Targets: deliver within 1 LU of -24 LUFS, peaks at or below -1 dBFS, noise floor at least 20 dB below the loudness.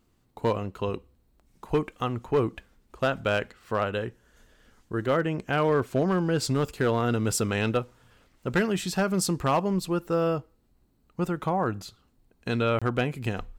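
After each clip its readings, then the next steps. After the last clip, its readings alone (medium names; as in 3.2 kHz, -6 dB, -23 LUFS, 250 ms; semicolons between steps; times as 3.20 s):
clipped samples 0.7%; clipping level -16.5 dBFS; dropouts 1; longest dropout 26 ms; loudness -27.5 LUFS; peak level -16.5 dBFS; loudness target -24.0 LUFS
-> clip repair -16.5 dBFS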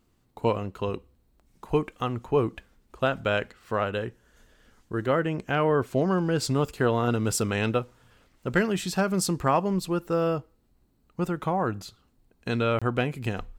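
clipped samples 0.0%; dropouts 1; longest dropout 26 ms
-> interpolate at 12.79 s, 26 ms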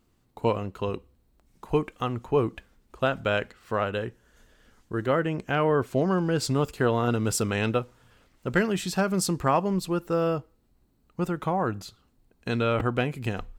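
dropouts 0; loudness -27.0 LUFS; peak level -9.5 dBFS; loudness target -24.0 LUFS
-> trim +3 dB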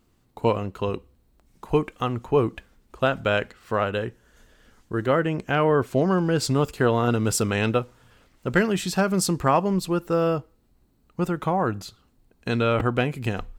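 loudness -24.0 LUFS; peak level -6.5 dBFS; noise floor -64 dBFS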